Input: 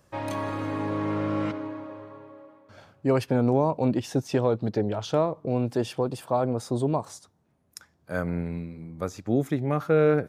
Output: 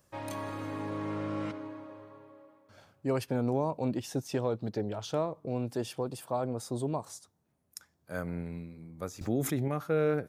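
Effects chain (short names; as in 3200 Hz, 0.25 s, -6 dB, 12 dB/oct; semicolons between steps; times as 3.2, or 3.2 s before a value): high shelf 6400 Hz +10 dB; 9.21–9.68 fast leveller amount 70%; gain -7.5 dB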